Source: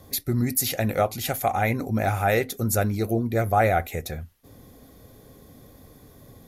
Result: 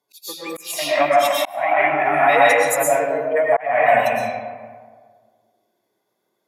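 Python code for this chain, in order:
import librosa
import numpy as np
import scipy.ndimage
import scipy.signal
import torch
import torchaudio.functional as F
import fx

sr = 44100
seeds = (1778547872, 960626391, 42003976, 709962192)

y = fx.weighting(x, sr, curve='A')
y = fx.noise_reduce_blind(y, sr, reduce_db=28)
y = fx.peak_eq(y, sr, hz=92.0, db=-6.0, octaves=1.8)
y = fx.pitch_keep_formants(y, sr, semitones=5.5)
y = fx.rev_freeverb(y, sr, rt60_s=1.7, hf_ratio=0.45, predelay_ms=80, drr_db=-4.5)
y = fx.auto_swell(y, sr, attack_ms=397.0)
y = y * 10.0 ** (6.5 / 20.0)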